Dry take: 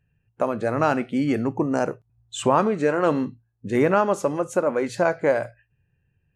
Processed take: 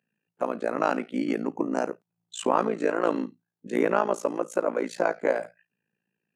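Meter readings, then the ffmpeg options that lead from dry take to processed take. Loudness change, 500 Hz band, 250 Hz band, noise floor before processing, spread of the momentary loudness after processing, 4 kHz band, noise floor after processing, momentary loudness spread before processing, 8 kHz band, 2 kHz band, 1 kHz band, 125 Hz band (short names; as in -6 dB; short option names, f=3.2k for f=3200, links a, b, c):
-4.5 dB, -4.5 dB, -5.0 dB, -71 dBFS, 9 LU, -4.5 dB, -85 dBFS, 9 LU, -4.5 dB, -4.0 dB, -4.0 dB, -14.0 dB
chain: -af "tremolo=f=56:d=0.974,highpass=f=210:w=0.5412,highpass=f=210:w=1.3066"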